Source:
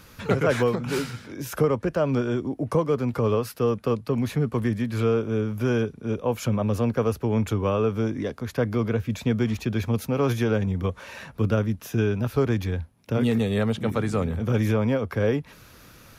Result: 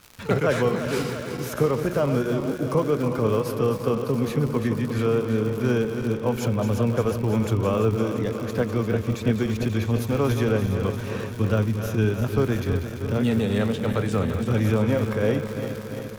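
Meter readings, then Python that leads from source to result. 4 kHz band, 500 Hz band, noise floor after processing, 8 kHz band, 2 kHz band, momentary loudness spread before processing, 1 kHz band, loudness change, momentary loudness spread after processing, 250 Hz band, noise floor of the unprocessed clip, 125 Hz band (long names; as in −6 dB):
+1.5 dB, +1.0 dB, −33 dBFS, +2.0 dB, +1.0 dB, 6 LU, +1.0 dB, +1.0 dB, 5 LU, +1.0 dB, −50 dBFS, +1.5 dB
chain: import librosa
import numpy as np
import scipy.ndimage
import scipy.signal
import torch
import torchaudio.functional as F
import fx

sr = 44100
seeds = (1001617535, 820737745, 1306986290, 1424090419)

y = fx.reverse_delay_fb(x, sr, ms=172, feedback_pct=83, wet_db=-9.0)
y = np.sign(y) * np.maximum(np.abs(y) - 10.0 ** (-50.5 / 20.0), 0.0)
y = fx.dmg_crackle(y, sr, seeds[0], per_s=150.0, level_db=-31.0)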